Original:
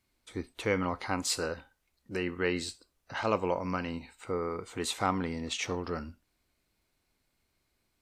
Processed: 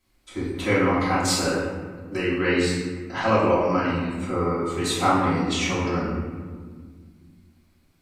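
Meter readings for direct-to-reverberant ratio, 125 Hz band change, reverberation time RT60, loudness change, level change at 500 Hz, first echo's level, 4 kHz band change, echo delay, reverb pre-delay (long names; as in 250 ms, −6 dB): −9.5 dB, +12.0 dB, 1.7 s, +10.0 dB, +9.5 dB, no echo audible, +8.0 dB, no echo audible, 3 ms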